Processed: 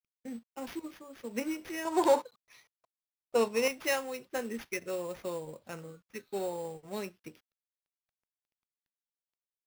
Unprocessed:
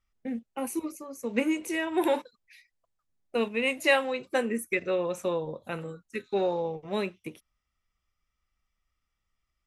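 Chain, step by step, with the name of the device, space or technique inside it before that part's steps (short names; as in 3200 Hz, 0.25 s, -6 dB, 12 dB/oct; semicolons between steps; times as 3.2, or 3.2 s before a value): early companding sampler (sample-rate reducer 8100 Hz, jitter 0%; companded quantiser 6-bit); 1.85–3.68 graphic EQ 125/500/1000/4000/8000 Hz +8/+8/+10/+5/+5 dB; gain -8 dB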